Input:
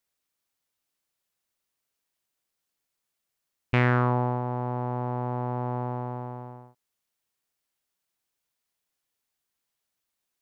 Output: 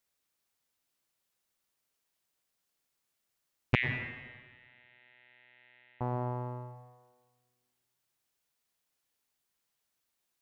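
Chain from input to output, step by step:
0:03.75–0:06.01: elliptic band-pass filter 1,900–3,800 Hz, stop band 40 dB
dense smooth reverb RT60 1.5 s, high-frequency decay 0.8×, pre-delay 85 ms, DRR 9 dB

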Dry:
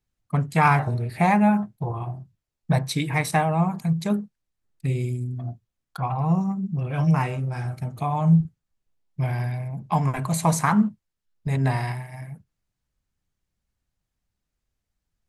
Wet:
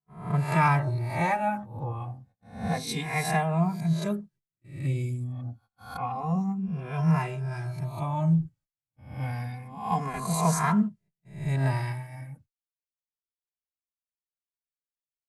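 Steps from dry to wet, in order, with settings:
peak hold with a rise ahead of every peak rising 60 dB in 0.55 s
noise gate −47 dBFS, range −35 dB
barber-pole flanger 2.5 ms −0.28 Hz
level −3 dB

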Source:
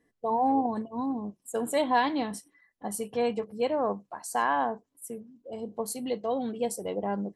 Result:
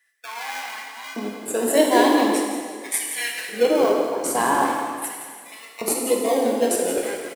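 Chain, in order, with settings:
high-shelf EQ 4,800 Hz +10.5 dB
mains-hum notches 50/100/150/200/250/300/350/400/450 Hz
in parallel at −5 dB: sample-and-hold swept by an LFO 39×, swing 60% 0.3 Hz
on the sum: auto-filter high-pass square 0.43 Hz 330–1,900 Hz
on a send: echo with shifted repeats 171 ms, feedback 31%, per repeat +37 Hz, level −10.5 dB
on the sum: dense smooth reverb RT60 1.8 s, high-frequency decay 0.95×, DRR 0.5 dB
level +2 dB

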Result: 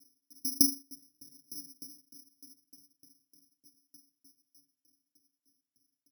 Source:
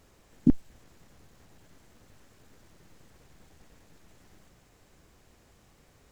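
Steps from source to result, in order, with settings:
adaptive Wiener filter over 41 samples
source passing by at 0:01.62, 16 m/s, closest 2.8 metres
formant filter i
comb filter 7.2 ms, depth 89%
convolution reverb RT60 0.50 s, pre-delay 3 ms, DRR 7.5 dB
bad sample-rate conversion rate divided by 8×, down filtered, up zero stuff
hum removal 45.82 Hz, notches 31
boost into a limiter +22 dB
tremolo with a ramp in dB decaying 3.3 Hz, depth 32 dB

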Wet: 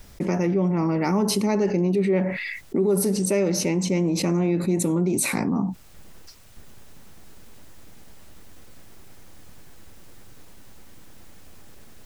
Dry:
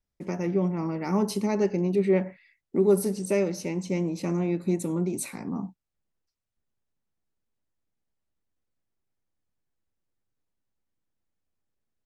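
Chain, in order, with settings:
envelope flattener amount 70%
level −2 dB

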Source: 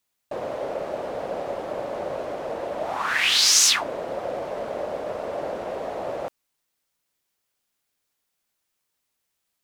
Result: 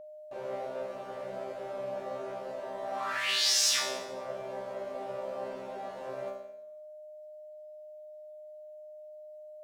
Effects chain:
resonators tuned to a chord C3 fifth, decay 0.79 s
steady tone 610 Hz −54 dBFS
level +9 dB

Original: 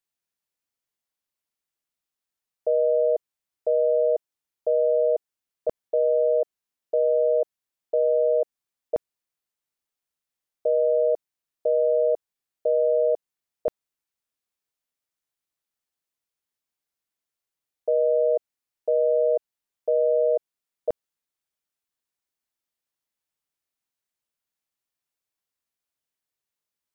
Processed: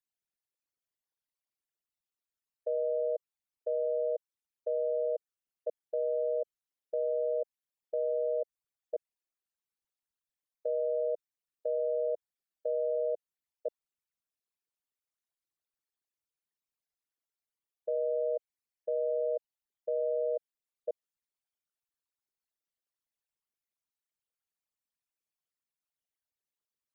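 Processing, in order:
spectral envelope exaggerated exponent 3
dynamic equaliser 330 Hz, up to −6 dB, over −40 dBFS, Q 1.9
level −8 dB

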